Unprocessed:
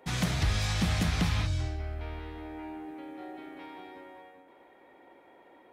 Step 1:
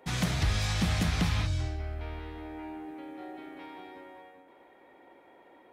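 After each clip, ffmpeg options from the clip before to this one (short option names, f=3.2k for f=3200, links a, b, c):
-af anull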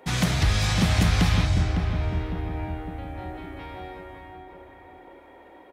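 -filter_complex "[0:a]asplit=2[a][b];[b]adelay=555,lowpass=f=1.5k:p=1,volume=-5.5dB,asplit=2[c][d];[d]adelay=555,lowpass=f=1.5k:p=1,volume=0.49,asplit=2[e][f];[f]adelay=555,lowpass=f=1.5k:p=1,volume=0.49,asplit=2[g][h];[h]adelay=555,lowpass=f=1.5k:p=1,volume=0.49,asplit=2[i][j];[j]adelay=555,lowpass=f=1.5k:p=1,volume=0.49,asplit=2[k][l];[l]adelay=555,lowpass=f=1.5k:p=1,volume=0.49[m];[a][c][e][g][i][k][m]amix=inputs=7:normalize=0,volume=6dB"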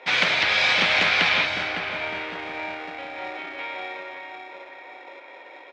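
-filter_complex "[0:a]asplit=2[a][b];[b]acrusher=samples=29:mix=1:aa=0.000001,volume=-7dB[c];[a][c]amix=inputs=2:normalize=0,crystalizer=i=5.5:c=0,highpass=480,equalizer=f=560:t=q:w=4:g=5,equalizer=f=950:t=q:w=4:g=3,equalizer=f=1.5k:t=q:w=4:g=4,equalizer=f=2.3k:t=q:w=4:g=8,lowpass=f=3.7k:w=0.5412,lowpass=f=3.7k:w=1.3066"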